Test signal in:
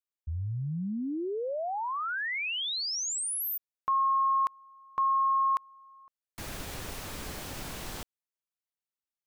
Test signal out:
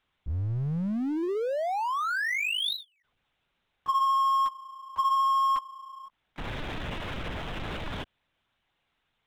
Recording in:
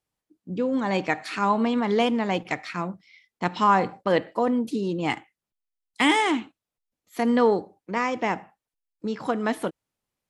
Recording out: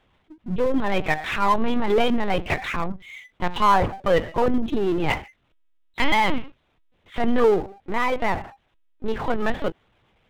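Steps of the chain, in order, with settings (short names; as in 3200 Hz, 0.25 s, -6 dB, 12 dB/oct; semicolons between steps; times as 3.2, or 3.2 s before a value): LPC vocoder at 8 kHz pitch kept; power-law curve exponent 0.7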